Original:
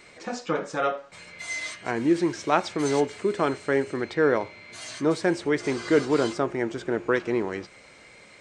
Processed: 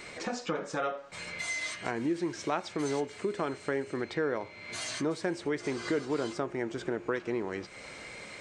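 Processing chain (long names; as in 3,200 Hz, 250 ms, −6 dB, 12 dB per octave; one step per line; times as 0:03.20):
downward compressor 2.5 to 1, threshold −41 dBFS, peak gain reduction 17 dB
level +5.5 dB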